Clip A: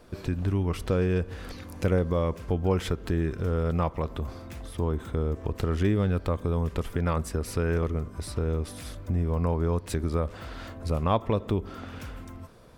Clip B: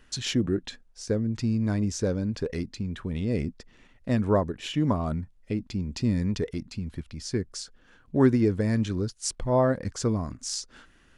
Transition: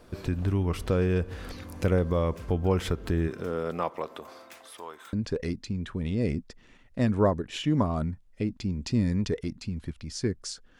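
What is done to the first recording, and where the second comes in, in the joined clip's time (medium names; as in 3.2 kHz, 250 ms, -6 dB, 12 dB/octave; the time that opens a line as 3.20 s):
clip A
3.27–5.13 s: high-pass 170 Hz -> 1.2 kHz
5.13 s: go over to clip B from 2.23 s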